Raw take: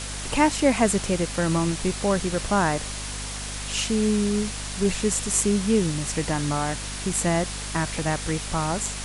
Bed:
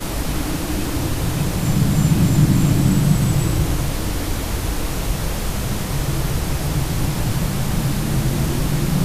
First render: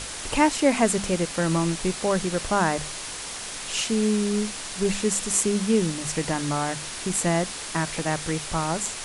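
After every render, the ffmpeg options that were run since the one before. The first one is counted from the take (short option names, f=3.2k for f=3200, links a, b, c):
-af "bandreject=f=50:t=h:w=6,bandreject=f=100:t=h:w=6,bandreject=f=150:t=h:w=6,bandreject=f=200:t=h:w=6,bandreject=f=250:t=h:w=6"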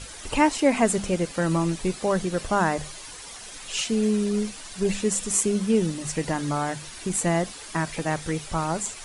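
-af "afftdn=nr=10:nf=-35"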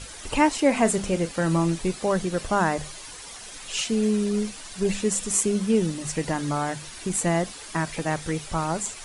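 -filter_complex "[0:a]asettb=1/sr,asplit=3[a][b][c];[a]atrim=end=0.664[d];[b]atrim=start=0.66:end=1.79,asetpts=PTS-STARTPTS,afade=t=in:d=0.004:c=qsin,afade=t=out:st=1.126:d=0.004:c=qsin,asplit=2[e][f];[f]adelay=36,volume=-13.5dB[g];[e][g]amix=inputs=2:normalize=0,atrim=end_sample=49833[h];[c]atrim=start=1.786[i];[d][h]acrossfade=d=0.004:c1=hsin:c2=qsin[j];[j][i]acrossfade=d=0.004:c1=qsin:c2=hsin"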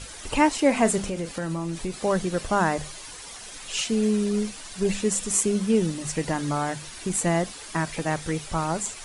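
-filter_complex "[0:a]asettb=1/sr,asplit=3[a][b][c];[a]atrim=end=1.034[d];[b]atrim=start=1.03:end=2.03,asetpts=PTS-STARTPTS,afade=t=in:d=0.004:c=qsin,afade=t=out:st=0.996:d=0.004:c=qsin,acompressor=threshold=-25dB:ratio=6:attack=3.2:release=140:knee=1:detection=peak[e];[c]atrim=start=2.026[f];[d][e]acrossfade=d=0.004:c1=hsin:c2=qsin[g];[g][f]acrossfade=d=0.004:c1=qsin:c2=hsin"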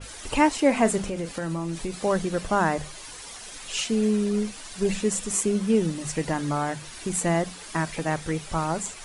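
-af "bandreject=f=60:t=h:w=6,bandreject=f=120:t=h:w=6,bandreject=f=180:t=h:w=6,adynamicequalizer=threshold=0.00891:dfrequency=3000:dqfactor=0.7:tfrequency=3000:tqfactor=0.7:attack=5:release=100:ratio=0.375:range=2:mode=cutabove:tftype=highshelf"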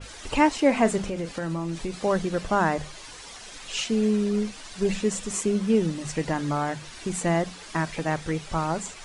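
-af "lowpass=7k"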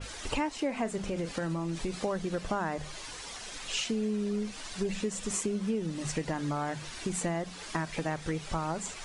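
-af "acompressor=threshold=-29dB:ratio=5"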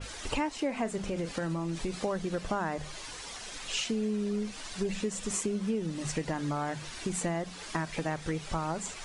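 -af anull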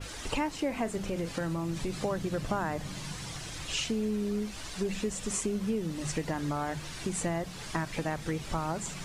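-filter_complex "[1:a]volume=-26.5dB[a];[0:a][a]amix=inputs=2:normalize=0"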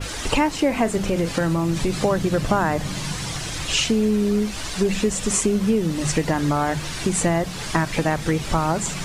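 -af "volume=11.5dB"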